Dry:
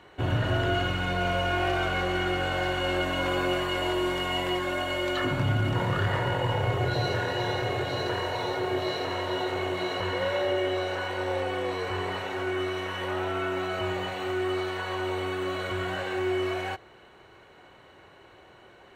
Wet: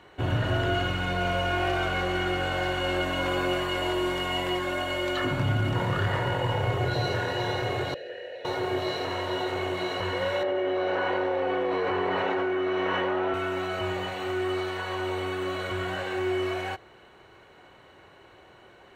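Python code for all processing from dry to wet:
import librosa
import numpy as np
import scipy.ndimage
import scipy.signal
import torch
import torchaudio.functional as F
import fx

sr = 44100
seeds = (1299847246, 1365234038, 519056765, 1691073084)

y = fx.chain(x, sr, fx.vowel_filter(vowel='e'),
    fx.high_shelf(hz=3800.0, db=7.0), at=(7.94, 8.45))
y = fx.chain(y, sr, fx.highpass(hz=190.0, slope=12),
    fx.spacing_loss(db_at_10k=28),
    fx.env_flatten(amount_pct=100), at=(10.43, 13.34))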